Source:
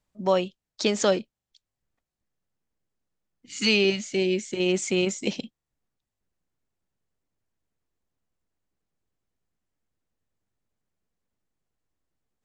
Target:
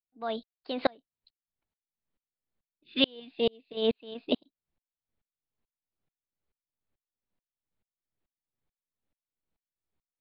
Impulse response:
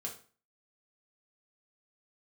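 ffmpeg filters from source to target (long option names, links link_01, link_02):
-af "aresample=8000,aresample=44100,asetrate=53802,aresample=44100,aeval=exprs='val(0)*pow(10,-37*if(lt(mod(-2.3*n/s,1),2*abs(-2.3)/1000),1-mod(-2.3*n/s,1)/(2*abs(-2.3)/1000),(mod(-2.3*n/s,1)-2*abs(-2.3)/1000)/(1-2*abs(-2.3)/1000))/20)':channel_layout=same,volume=2dB"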